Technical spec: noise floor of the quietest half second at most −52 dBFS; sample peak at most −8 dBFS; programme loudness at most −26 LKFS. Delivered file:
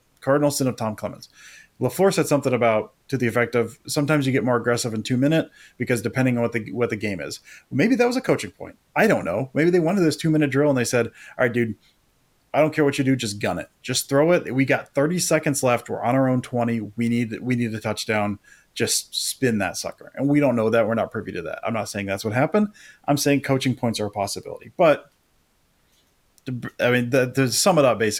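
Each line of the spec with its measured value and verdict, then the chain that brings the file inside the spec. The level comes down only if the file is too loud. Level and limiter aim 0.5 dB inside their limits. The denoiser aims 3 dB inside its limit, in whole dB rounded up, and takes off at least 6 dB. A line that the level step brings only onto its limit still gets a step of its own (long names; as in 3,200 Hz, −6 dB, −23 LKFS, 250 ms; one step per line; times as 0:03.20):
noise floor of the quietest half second −64 dBFS: in spec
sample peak −5.0 dBFS: out of spec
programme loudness −22.0 LKFS: out of spec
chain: level −4.5 dB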